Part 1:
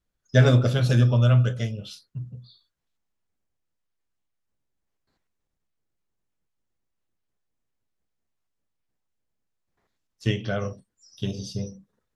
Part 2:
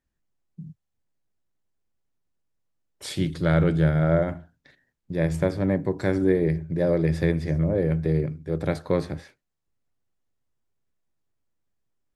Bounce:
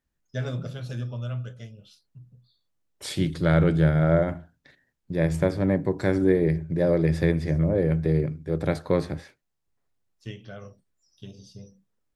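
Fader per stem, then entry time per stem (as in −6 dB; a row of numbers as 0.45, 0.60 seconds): −13.5, +0.5 decibels; 0.00, 0.00 seconds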